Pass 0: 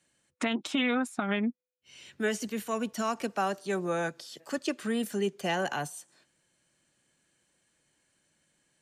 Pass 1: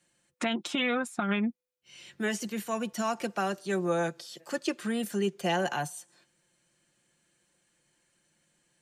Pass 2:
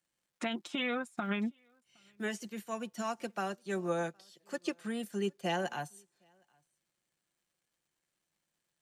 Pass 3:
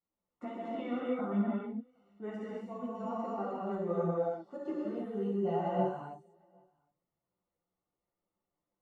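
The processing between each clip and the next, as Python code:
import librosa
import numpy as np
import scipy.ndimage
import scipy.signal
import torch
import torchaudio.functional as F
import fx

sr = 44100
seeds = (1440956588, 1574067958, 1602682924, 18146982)

y1 = x + 0.43 * np.pad(x, (int(5.7 * sr / 1000.0), 0))[:len(x)]
y2 = fx.dmg_crackle(y1, sr, seeds[0], per_s=440.0, level_db=-55.0)
y2 = y2 + 10.0 ** (-23.5 / 20.0) * np.pad(y2, (int(765 * sr / 1000.0), 0))[:len(y2)]
y2 = fx.upward_expand(y2, sr, threshold_db=-49.0, expansion=1.5)
y2 = y2 * librosa.db_to_amplitude(-4.0)
y3 = scipy.signal.savgol_filter(y2, 65, 4, mode='constant')
y3 = fx.rev_gated(y3, sr, seeds[1], gate_ms=350, shape='flat', drr_db=-6.0)
y3 = fx.chorus_voices(y3, sr, voices=6, hz=1.3, base_ms=13, depth_ms=3.0, mix_pct=45)
y3 = y3 * librosa.db_to_amplitude(-2.0)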